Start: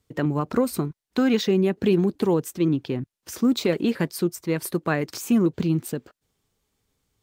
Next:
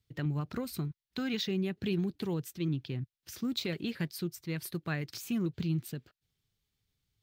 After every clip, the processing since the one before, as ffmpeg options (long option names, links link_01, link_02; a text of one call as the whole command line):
ffmpeg -i in.wav -af "equalizer=frequency=125:width_type=o:width=1:gain=5,equalizer=frequency=250:width_type=o:width=1:gain=-6,equalizer=frequency=500:width_type=o:width=1:gain=-8,equalizer=frequency=1000:width_type=o:width=1:gain=-8,equalizer=frequency=4000:width_type=o:width=1:gain=4,equalizer=frequency=8000:width_type=o:width=1:gain=-6,volume=-7dB" out.wav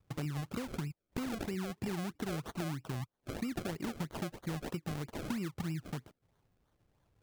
ffmpeg -i in.wav -af "acompressor=threshold=-42dB:ratio=12,acrusher=samples=33:mix=1:aa=0.000001:lfo=1:lforange=33:lforate=3.1,volume=7.5dB" out.wav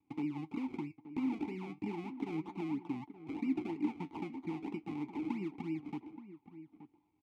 ffmpeg -i in.wav -filter_complex "[0:a]flanger=delay=3.3:depth=9.3:regen=65:speed=0.35:shape=triangular,asplit=3[link_01][link_02][link_03];[link_01]bandpass=frequency=300:width_type=q:width=8,volume=0dB[link_04];[link_02]bandpass=frequency=870:width_type=q:width=8,volume=-6dB[link_05];[link_03]bandpass=frequency=2240:width_type=q:width=8,volume=-9dB[link_06];[link_04][link_05][link_06]amix=inputs=3:normalize=0,asplit=2[link_07][link_08];[link_08]adelay=874.6,volume=-13dB,highshelf=frequency=4000:gain=-19.7[link_09];[link_07][link_09]amix=inputs=2:normalize=0,volume=15dB" out.wav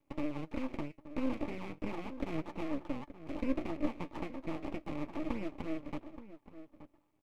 ffmpeg -i in.wav -af "aeval=exprs='max(val(0),0)':channel_layout=same,volume=5dB" out.wav